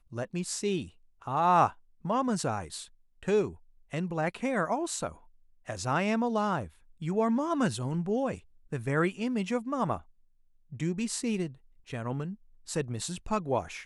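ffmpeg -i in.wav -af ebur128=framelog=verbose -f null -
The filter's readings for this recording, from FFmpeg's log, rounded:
Integrated loudness:
  I:         -31.0 LUFS
  Threshold: -41.5 LUFS
Loudness range:
  LRA:         4.6 LU
  Threshold: -51.6 LUFS
  LRA low:   -34.5 LUFS
  LRA high:  -30.0 LUFS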